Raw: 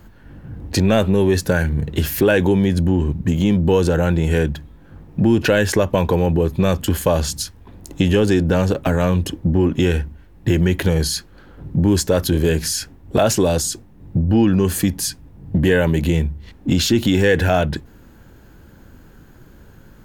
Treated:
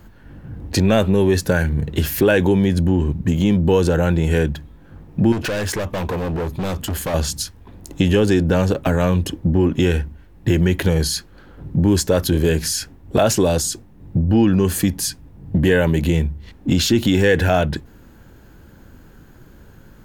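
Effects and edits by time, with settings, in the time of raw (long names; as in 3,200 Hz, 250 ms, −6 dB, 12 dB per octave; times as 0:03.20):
0:05.32–0:07.14: hard clipping −20.5 dBFS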